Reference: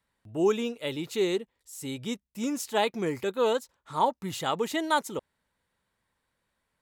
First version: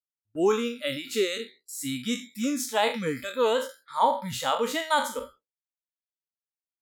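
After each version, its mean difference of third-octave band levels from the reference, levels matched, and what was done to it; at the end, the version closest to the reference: 6.0 dB: spectral trails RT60 0.45 s; spectral noise reduction 24 dB; gate with hold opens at -45 dBFS; in parallel at 0 dB: vocal rider within 5 dB 0.5 s; on the sum: gain -4.5 dB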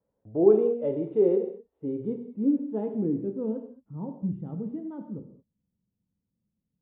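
14.5 dB: low shelf 66 Hz -9.5 dB; low-pass sweep 530 Hz -> 200 Hz, 1.38–3.85; non-linear reverb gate 0.25 s falling, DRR 4 dB; downsampling 8000 Hz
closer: first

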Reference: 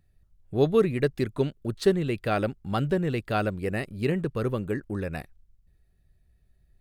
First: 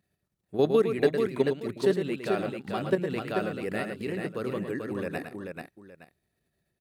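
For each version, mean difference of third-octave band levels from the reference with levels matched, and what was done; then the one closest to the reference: 6.0 dB: level quantiser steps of 11 dB; HPF 200 Hz 12 dB/oct; on a send: tapped delay 0.109/0.437/0.867 s -8/-5/-16.5 dB; on the sum: gain +3 dB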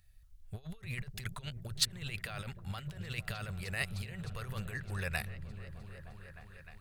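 11.0 dB: negative-ratio compressor -30 dBFS, ratio -0.5; passive tone stack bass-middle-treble 10-0-10; repeats that get brighter 0.306 s, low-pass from 200 Hz, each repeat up 1 oct, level -6 dB; gain +4 dB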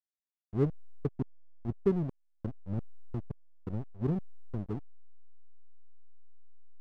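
15.0 dB: Gaussian blur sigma 21 samples; step gate "..xx..x..xxx" 86 bpm -60 dB; backlash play -28 dBFS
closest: first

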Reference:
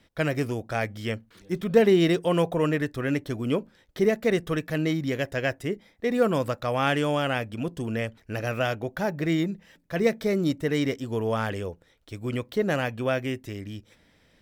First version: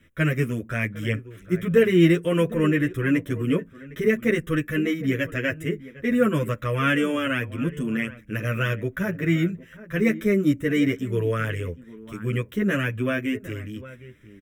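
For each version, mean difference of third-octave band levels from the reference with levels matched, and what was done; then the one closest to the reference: 4.5 dB: fixed phaser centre 1900 Hz, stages 4; outdoor echo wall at 130 m, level -16 dB; endless flanger 9.1 ms -0.52 Hz; gain +8 dB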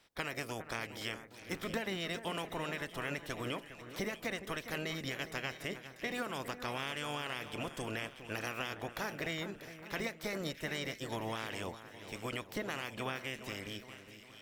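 11.0 dB: spectral limiter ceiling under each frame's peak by 19 dB; compressor 6:1, threshold -28 dBFS, peak gain reduction 14 dB; split-band echo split 2000 Hz, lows 0.41 s, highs 0.64 s, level -11.5 dB; gain -7 dB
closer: first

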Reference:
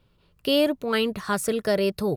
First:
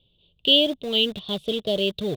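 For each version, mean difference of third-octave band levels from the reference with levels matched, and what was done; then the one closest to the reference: 6.5 dB: EQ curve 660 Hz 0 dB, 1700 Hz -30 dB, 3000 Hz +10 dB, 6700 Hz -25 dB; in parallel at -11 dB: bit-crush 5-bit; on the sum: bell 3600 Hz +15 dB 0.31 oct; gain -4 dB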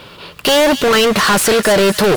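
9.5 dB: overdrive pedal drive 37 dB, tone 6000 Hz, clips at -10 dBFS; on a send: thin delay 0.255 s, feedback 57%, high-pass 2200 Hz, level -9 dB; on the sum: gain +4.5 dB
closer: first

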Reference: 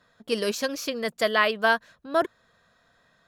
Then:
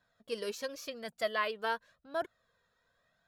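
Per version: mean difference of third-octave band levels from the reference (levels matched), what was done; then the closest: 1.5 dB: flange 0.92 Hz, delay 1.2 ms, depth 1.1 ms, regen +35%; gain -8 dB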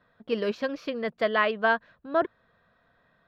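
4.5 dB: air absorption 340 m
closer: first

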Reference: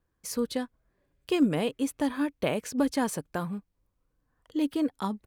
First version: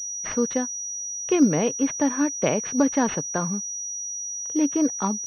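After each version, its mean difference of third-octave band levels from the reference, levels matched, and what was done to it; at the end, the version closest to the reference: 6.0 dB: HPF 100 Hz 24 dB/oct; pulse-width modulation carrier 5800 Hz; gain +5.5 dB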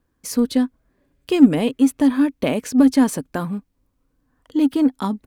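4.0 dB: bell 260 Hz +11 dB 0.33 oct; in parallel at -8.5 dB: soft clip -23 dBFS, distortion -6 dB; on the sum: gain +4 dB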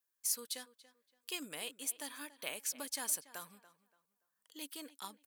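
10.0 dB: differentiator; on a send: tape echo 0.286 s, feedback 29%, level -16 dB, low-pass 3300 Hz; on the sum: gain +2.5 dB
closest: second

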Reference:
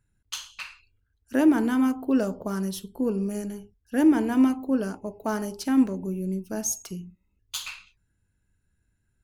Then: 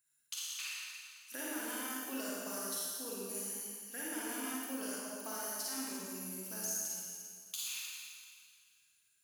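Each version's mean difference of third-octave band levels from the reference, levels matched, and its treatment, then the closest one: 16.0 dB: differentiator; compressor, threshold -46 dBFS, peak gain reduction 19 dB; Schroeder reverb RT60 2.1 s, DRR -6.5 dB; gain +3.5 dB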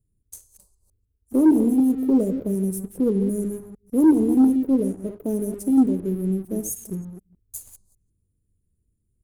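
6.5 dB: reverse delay 0.15 s, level -11 dB; Chebyshev band-stop 470–8600 Hz, order 3; sample leveller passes 1; gain +2.5 dB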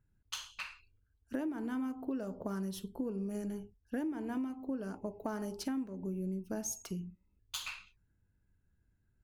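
4.0 dB: bell 9700 Hz -5.5 dB 3 oct; compressor 12:1, threshold -32 dBFS, peak gain reduction 18 dB; mismatched tape noise reduction decoder only; gain -2 dB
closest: third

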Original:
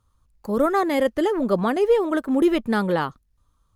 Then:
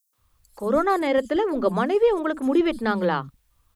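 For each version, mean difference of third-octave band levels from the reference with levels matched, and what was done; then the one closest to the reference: 11.0 dB: LPF 9500 Hz 12 dB/oct; requantised 12-bit, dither triangular; three bands offset in time highs, mids, lows 0.13/0.18 s, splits 230/5900 Hz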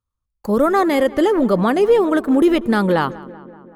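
2.5 dB: gate -54 dBFS, range -24 dB; in parallel at +2 dB: limiter -17 dBFS, peak gain reduction 8 dB; on the sum: darkening echo 0.19 s, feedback 67%, low-pass 2400 Hz, level -19 dB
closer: second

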